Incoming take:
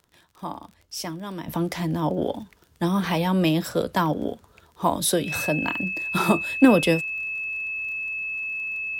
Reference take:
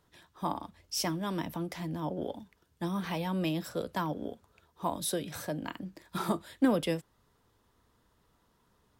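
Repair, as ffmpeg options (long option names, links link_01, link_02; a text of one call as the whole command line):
ffmpeg -i in.wav -af "adeclick=threshold=4,bandreject=frequency=2600:width=30,asetnsamples=nb_out_samples=441:pad=0,asendcmd='1.48 volume volume -10.5dB',volume=0dB" out.wav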